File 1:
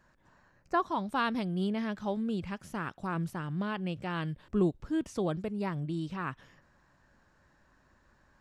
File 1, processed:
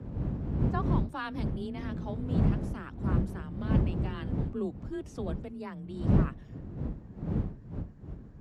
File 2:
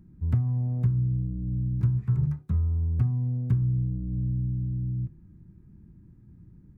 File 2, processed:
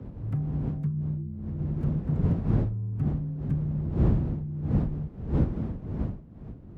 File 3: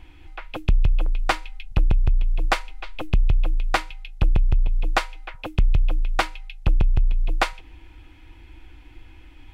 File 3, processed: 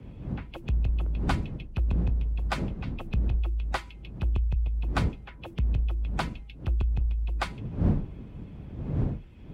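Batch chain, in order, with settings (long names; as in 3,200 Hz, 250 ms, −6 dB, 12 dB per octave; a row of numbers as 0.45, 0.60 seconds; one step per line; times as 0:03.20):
spectral magnitudes quantised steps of 15 dB
wind on the microphone 150 Hz −25 dBFS
frequency shifter +26 Hz
normalise the peak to −12 dBFS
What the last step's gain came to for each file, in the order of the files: −6.5, −5.0, −9.0 decibels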